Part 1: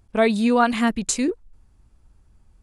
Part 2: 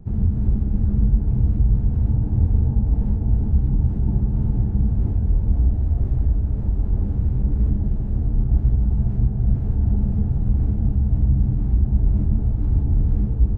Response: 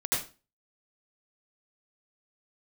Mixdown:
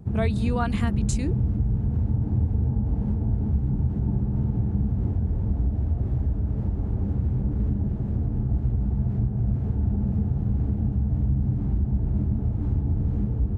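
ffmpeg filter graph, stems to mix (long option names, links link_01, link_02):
-filter_complex "[0:a]volume=-6.5dB[link_01];[1:a]highpass=76,volume=2dB[link_02];[link_01][link_02]amix=inputs=2:normalize=0,acompressor=threshold=-22dB:ratio=2"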